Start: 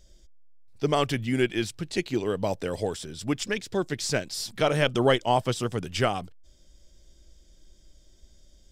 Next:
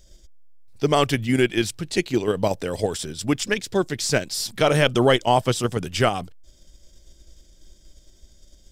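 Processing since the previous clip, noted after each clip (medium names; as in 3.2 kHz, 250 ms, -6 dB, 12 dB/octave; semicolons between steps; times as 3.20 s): in parallel at +2 dB: level held to a coarse grid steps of 13 dB; on the sum: treble shelf 7.8 kHz +5 dB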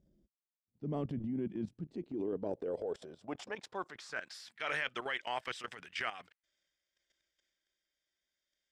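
band-pass sweep 210 Hz -> 1.9 kHz, 1.75–4.55 s; level held to a coarse grid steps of 18 dB; transient shaper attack -4 dB, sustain +5 dB; trim +1 dB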